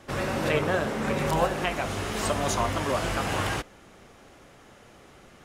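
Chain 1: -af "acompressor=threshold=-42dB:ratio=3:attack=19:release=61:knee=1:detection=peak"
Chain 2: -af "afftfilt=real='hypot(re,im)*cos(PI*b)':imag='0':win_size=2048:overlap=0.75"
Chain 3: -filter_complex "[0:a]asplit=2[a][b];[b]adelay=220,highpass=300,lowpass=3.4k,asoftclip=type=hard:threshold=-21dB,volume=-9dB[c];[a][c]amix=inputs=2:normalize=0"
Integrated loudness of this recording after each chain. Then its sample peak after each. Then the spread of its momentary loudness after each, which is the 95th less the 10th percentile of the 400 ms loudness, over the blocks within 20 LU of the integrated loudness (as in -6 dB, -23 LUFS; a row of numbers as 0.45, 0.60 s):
-38.0, -31.0, -27.0 LUFS; -21.5, -7.5, -10.5 dBFS; 15, 5, 5 LU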